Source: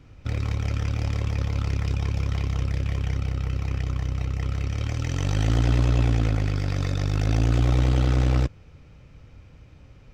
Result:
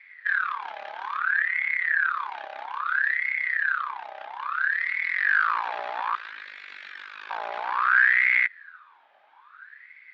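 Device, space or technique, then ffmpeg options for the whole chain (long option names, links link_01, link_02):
voice changer toy: -filter_complex "[0:a]asettb=1/sr,asplit=3[link_01][link_02][link_03];[link_01]atrim=end=6.154[link_04];[link_02]atrim=start=6.15:end=7.3,asetpts=PTS-STARTPTS,afade=type=in:duration=0.004:curve=qsin,afade=type=out:start_time=1.146:duration=0.004:curve=qsin,highpass=frequency=1100:poles=1[link_05];[link_03]atrim=start=7.296[link_06];[link_04][link_05]acrossfade=duration=0.004:curve1=hsin:curve2=qsin[link_07];[link_07][link_06]acrossfade=duration=0.004:curve1=qsin:curve2=hsin,aeval=exprs='val(0)*sin(2*PI*1400*n/s+1400*0.5/0.6*sin(2*PI*0.6*n/s))':channel_layout=same,highpass=460,equalizer=frequency=470:width_type=q:width=4:gain=-4,equalizer=frequency=690:width_type=q:width=4:gain=-8,equalizer=frequency=1200:width_type=q:width=4:gain=4,equalizer=frequency=1600:width_type=q:width=4:gain=9,equalizer=frequency=2400:width_type=q:width=4:gain=7,equalizer=frequency=3600:width_type=q:width=4:gain=4,lowpass=frequency=4300:width=0.5412,lowpass=frequency=4300:width=1.3066,asettb=1/sr,asplit=3[link_08][link_09][link_10];[link_08]atrim=end=1.184[link_11];[link_09]atrim=start=1.18:end=2.09,asetpts=PTS-STARTPTS,afade=type=in:duration=0.004:curve=qsin,afade=type=out:start_time=0.906:duration=0.004:curve=qsin,acrossover=split=3900[link_12][link_13];[link_13]acompressor=threshold=-53dB:ratio=4:attack=1:release=60[link_14];[link_12][link_14]amix=inputs=2:normalize=0[link_15];[link_10]atrim=start=2.086[link_16];[link_11][link_15]acrossfade=duration=0.004:curve1=hsin:curve2=qsin[link_17];[link_17][link_16]acrossfade=duration=0.004:curve1=qsin:curve2=hsin,equalizer=frequency=1800:width_type=o:width=0.93:gain=4.5,volume=-7.5dB"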